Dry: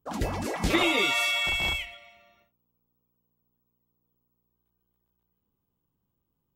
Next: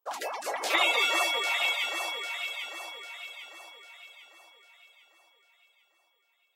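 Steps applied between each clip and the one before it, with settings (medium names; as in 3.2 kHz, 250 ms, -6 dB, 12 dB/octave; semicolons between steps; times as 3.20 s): reverb removal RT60 1.5 s; high-pass 540 Hz 24 dB/octave; on a send: echo whose repeats swap between lows and highs 399 ms, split 1.5 kHz, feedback 65%, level -2 dB; on the sum: trim +2 dB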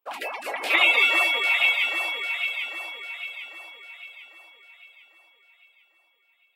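fifteen-band graphic EQ 250 Hz +7 dB, 2.5 kHz +11 dB, 6.3 kHz -10 dB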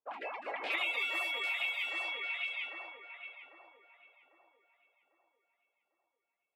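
level-controlled noise filter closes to 860 Hz, open at -19.5 dBFS; compression 3:1, threshold -27 dBFS, peak gain reduction 9.5 dB; trim -7 dB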